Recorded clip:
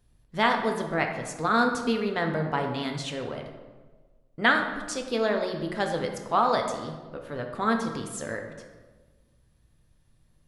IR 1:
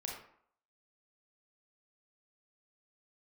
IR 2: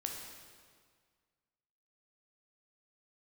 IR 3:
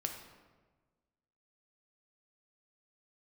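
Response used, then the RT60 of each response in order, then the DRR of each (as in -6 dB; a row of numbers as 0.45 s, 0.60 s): 3; 0.60 s, 1.8 s, 1.4 s; -2.0 dB, 1.0 dB, 3.0 dB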